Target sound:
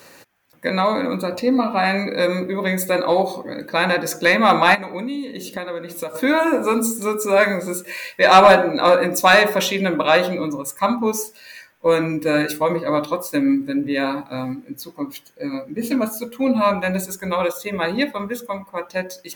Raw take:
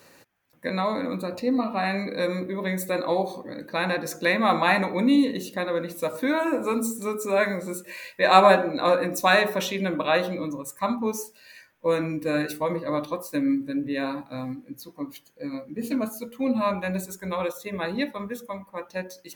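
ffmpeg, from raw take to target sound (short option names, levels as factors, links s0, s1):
-filter_complex "[0:a]lowshelf=f=350:g=-4,asplit=3[s0][s1][s2];[s0]afade=t=out:st=4.74:d=0.02[s3];[s1]acompressor=threshold=0.02:ratio=6,afade=t=in:st=4.74:d=0.02,afade=t=out:st=6.14:d=0.02[s4];[s2]afade=t=in:st=6.14:d=0.02[s5];[s3][s4][s5]amix=inputs=3:normalize=0,asoftclip=type=tanh:threshold=0.316,volume=2.66"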